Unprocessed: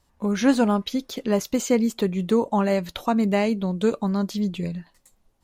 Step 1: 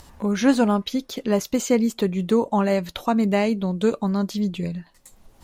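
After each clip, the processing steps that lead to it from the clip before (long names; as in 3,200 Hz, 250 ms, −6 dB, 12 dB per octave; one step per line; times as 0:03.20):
upward compression, threshold −34 dBFS
level +1 dB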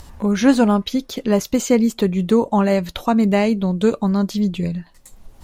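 low-shelf EQ 110 Hz +7.5 dB
level +3 dB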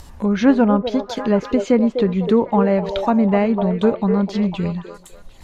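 echo through a band-pass that steps 250 ms, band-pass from 490 Hz, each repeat 0.7 octaves, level −4.5 dB
treble cut that deepens with the level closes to 2,000 Hz, closed at −12.5 dBFS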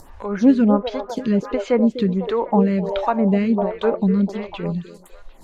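phaser with staggered stages 1.4 Hz
level +1.5 dB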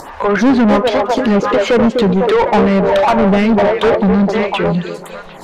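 mid-hump overdrive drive 29 dB, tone 2,200 Hz, clips at −3.5 dBFS
feedback echo with a swinging delay time 185 ms, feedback 73%, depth 204 cents, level −24 dB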